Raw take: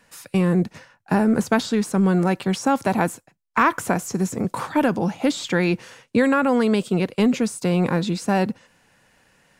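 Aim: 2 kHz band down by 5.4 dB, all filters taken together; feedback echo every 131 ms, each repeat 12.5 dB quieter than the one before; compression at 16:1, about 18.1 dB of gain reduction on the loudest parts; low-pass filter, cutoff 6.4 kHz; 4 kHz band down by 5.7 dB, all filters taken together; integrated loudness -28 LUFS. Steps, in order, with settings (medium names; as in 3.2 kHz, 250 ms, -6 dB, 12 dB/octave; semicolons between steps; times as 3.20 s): low-pass 6.4 kHz; peaking EQ 2 kHz -6.5 dB; peaking EQ 4 kHz -4.5 dB; compression 16:1, threshold -33 dBFS; feedback delay 131 ms, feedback 24%, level -12.5 dB; trim +10 dB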